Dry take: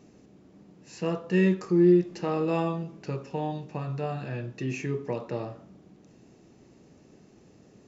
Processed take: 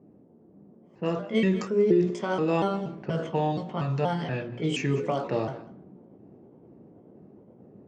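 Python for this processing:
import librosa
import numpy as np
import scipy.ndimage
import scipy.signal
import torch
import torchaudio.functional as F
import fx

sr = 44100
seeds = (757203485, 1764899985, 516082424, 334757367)

y = fx.pitch_trill(x, sr, semitones=3.0, every_ms=238)
y = scipy.signal.sosfilt(scipy.signal.butter(2, 88.0, 'highpass', fs=sr, output='sos'), y)
y = fx.hum_notches(y, sr, base_hz=60, count=8)
y = fx.rider(y, sr, range_db=3, speed_s=0.5)
y = fx.env_lowpass(y, sr, base_hz=580.0, full_db=-25.5)
y = y + 10.0 ** (-19.5 / 20.0) * np.pad(y, (int(193 * sr / 1000.0), 0))[:len(y)]
y = fx.sustainer(y, sr, db_per_s=92.0)
y = y * 10.0 ** (2.5 / 20.0)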